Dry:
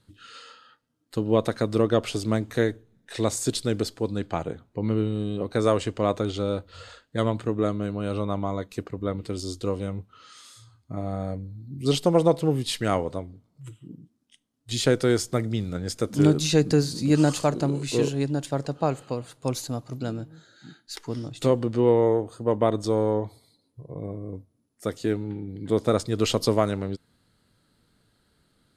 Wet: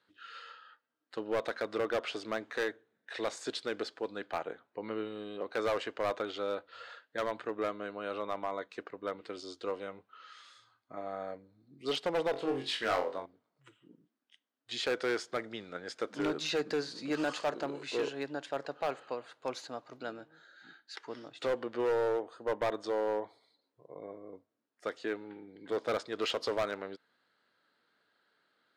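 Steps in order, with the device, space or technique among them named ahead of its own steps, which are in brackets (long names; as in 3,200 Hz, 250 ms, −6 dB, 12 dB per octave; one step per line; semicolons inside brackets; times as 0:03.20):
megaphone (band-pass filter 510–3,600 Hz; parametric band 1,600 Hz +5 dB 0.52 octaves; hard clipping −22.5 dBFS, distortion −10 dB)
0:12.31–0:13.26: flutter between parallel walls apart 3.8 metres, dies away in 0.29 s
level −3.5 dB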